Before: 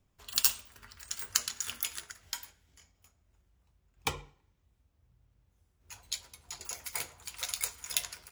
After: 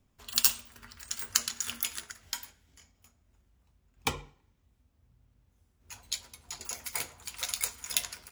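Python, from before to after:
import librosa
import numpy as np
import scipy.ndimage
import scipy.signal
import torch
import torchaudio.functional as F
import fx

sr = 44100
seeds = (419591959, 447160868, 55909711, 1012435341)

y = fx.peak_eq(x, sr, hz=240.0, db=8.0, octaves=0.27)
y = y * 10.0 ** (2.0 / 20.0)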